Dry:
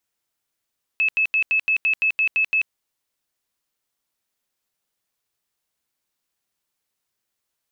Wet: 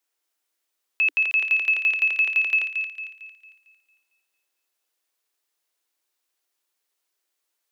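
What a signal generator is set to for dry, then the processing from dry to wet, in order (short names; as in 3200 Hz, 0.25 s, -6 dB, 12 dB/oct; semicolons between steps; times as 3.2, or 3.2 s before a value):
tone bursts 2600 Hz, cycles 223, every 0.17 s, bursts 10, -16 dBFS
steep high-pass 280 Hz 96 dB/oct; thin delay 0.226 s, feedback 42%, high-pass 1700 Hz, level -5.5 dB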